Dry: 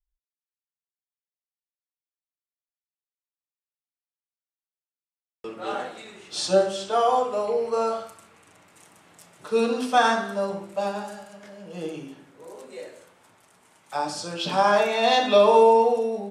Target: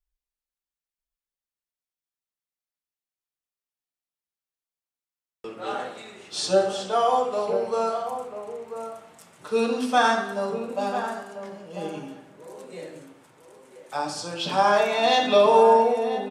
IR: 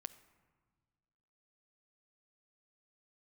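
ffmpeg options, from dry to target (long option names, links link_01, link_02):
-filter_complex "[0:a]asplit=2[link_01][link_02];[link_02]adelay=991.3,volume=-9dB,highshelf=frequency=4000:gain=-22.3[link_03];[link_01][link_03]amix=inputs=2:normalize=0[link_04];[1:a]atrim=start_sample=2205[link_05];[link_04][link_05]afir=irnorm=-1:irlink=0,volume=4.5dB"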